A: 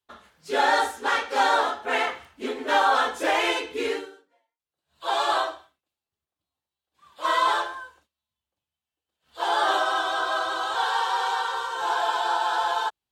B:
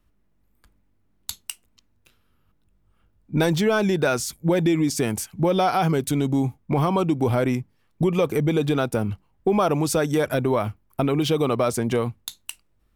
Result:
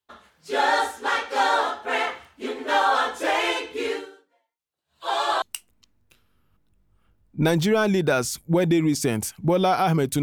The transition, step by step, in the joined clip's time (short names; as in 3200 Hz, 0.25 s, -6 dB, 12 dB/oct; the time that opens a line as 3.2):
A
5.42 switch to B from 1.37 s